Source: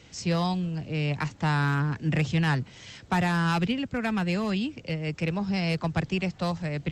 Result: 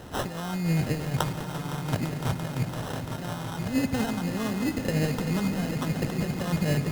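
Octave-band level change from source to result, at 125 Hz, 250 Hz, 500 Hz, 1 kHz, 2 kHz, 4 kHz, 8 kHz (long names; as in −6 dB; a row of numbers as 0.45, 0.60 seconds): −1.0, −0.5, 0.0, −3.5, −5.0, −2.0, +5.5 decibels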